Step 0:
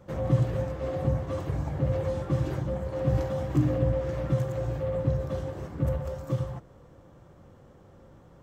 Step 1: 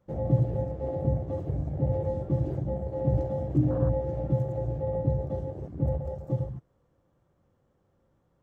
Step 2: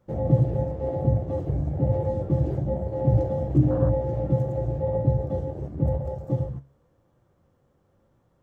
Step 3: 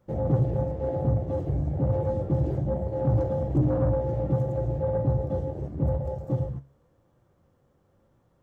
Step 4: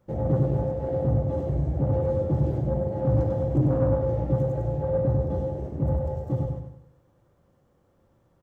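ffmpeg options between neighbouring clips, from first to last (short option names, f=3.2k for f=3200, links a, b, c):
-af "afwtdn=0.0282"
-af "flanger=delay=8.1:depth=6.7:regen=73:speed=0.98:shape=sinusoidal,volume=8.5dB"
-af "asoftclip=type=tanh:threshold=-16dB"
-af "aecho=1:1:97|194|291|388|485:0.562|0.225|0.09|0.036|0.0144"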